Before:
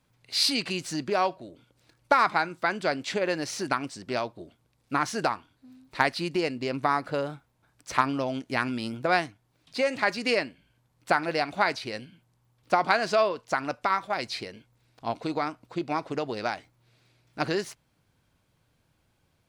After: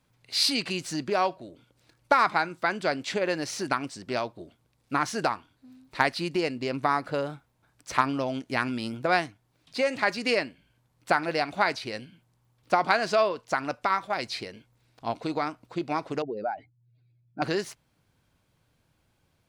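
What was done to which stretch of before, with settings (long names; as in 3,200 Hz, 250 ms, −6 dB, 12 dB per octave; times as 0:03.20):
0:16.22–0:17.42: expanding power law on the bin magnitudes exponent 2.4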